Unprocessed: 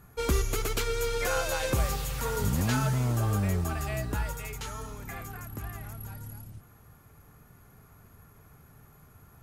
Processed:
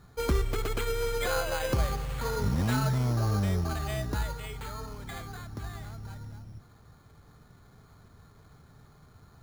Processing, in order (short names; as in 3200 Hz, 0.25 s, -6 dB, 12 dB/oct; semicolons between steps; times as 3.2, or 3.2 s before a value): careless resampling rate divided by 8×, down filtered, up hold